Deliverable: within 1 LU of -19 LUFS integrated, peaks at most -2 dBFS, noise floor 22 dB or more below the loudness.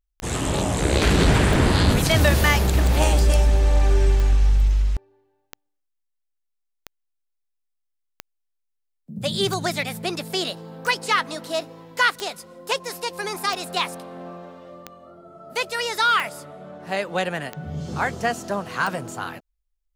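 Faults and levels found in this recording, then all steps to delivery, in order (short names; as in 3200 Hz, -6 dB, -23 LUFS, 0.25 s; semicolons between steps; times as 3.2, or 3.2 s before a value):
clicks 15; loudness -22.0 LUFS; peak -5.5 dBFS; loudness target -19.0 LUFS
-> de-click; gain +3 dB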